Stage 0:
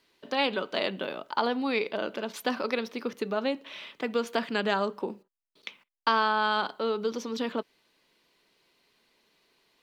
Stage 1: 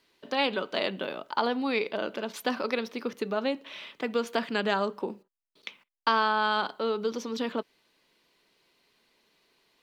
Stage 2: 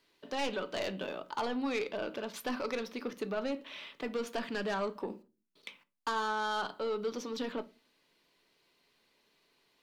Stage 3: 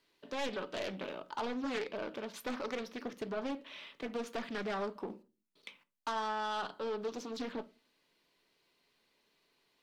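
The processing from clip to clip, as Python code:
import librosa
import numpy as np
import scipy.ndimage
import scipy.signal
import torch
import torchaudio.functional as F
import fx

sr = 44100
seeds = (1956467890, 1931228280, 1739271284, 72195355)

y1 = x
y2 = 10.0 ** (-24.0 / 20.0) * np.tanh(y1 / 10.0 ** (-24.0 / 20.0))
y2 = fx.room_shoebox(y2, sr, seeds[0], volume_m3=130.0, walls='furnished', distance_m=0.34)
y2 = y2 * librosa.db_to_amplitude(-3.5)
y3 = fx.doppler_dist(y2, sr, depth_ms=0.46)
y3 = y3 * librosa.db_to_amplitude(-3.0)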